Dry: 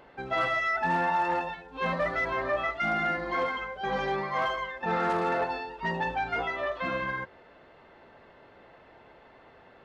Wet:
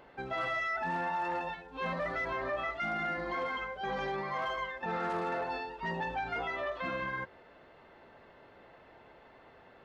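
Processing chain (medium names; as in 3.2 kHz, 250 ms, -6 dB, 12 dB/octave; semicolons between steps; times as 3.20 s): peak limiter -25 dBFS, peak gain reduction 6.5 dB; trim -2.5 dB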